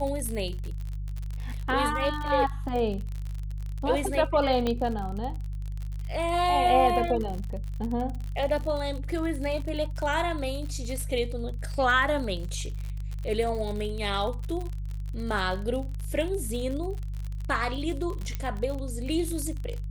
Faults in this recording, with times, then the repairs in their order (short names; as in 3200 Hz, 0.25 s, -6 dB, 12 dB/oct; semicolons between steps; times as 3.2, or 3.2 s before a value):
crackle 47/s -32 dBFS
hum 50 Hz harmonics 3 -33 dBFS
4.67 pop -15 dBFS
18.35 pop -18 dBFS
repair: de-click; de-hum 50 Hz, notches 3